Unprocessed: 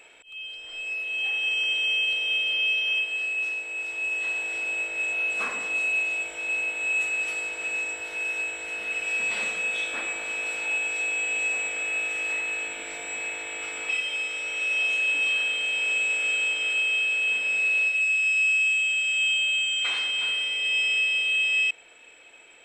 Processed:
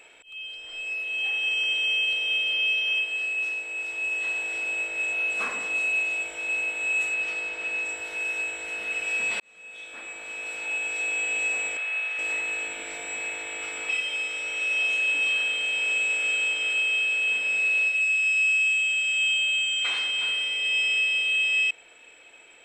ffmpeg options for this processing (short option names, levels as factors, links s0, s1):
-filter_complex "[0:a]asettb=1/sr,asplit=3[s0][s1][s2];[s0]atrim=end=7.144[s3];[s1]atrim=start=7.14:end=7.85,asetpts=PTS-STARTPTS,afade=t=in:d=0.004:c=qsin,afade=t=out:st=0.706:d=0.004:c=qsin,lowpass=5600[s4];[s2]atrim=start=7.846[s5];[s3][s4]acrossfade=d=0.004:c1=hsin:c2=qsin[s6];[s6][s5]acrossfade=d=0.004:c1=qsin:c2=hsin,asettb=1/sr,asplit=3[s7][s8][s9];[s7]atrim=end=11.774[s10];[s8]atrim=start=11.77:end=12.19,asetpts=PTS-STARTPTS,afade=t=in:d=0.004:c=qsin,afade=t=out:st=0.416:d=0.004:c=qsin,highpass=750,lowpass=4000[s11];[s9]atrim=start=12.186[s12];[s10][s11]acrossfade=d=0.004:c1=hsin:c2=qsin[s13];[s13][s12]acrossfade=d=0.004:c1=qsin:c2=hsin,asplit=2[s14][s15];[s14]atrim=end=9.4,asetpts=PTS-STARTPTS,afade=t=out:st=9.396:d=0.004:c=hsin[s16];[s15]atrim=start=9.4,asetpts=PTS-STARTPTS,afade=t=in:d=1.76[s17];[s16][s17]concat=n=2:v=0:a=1"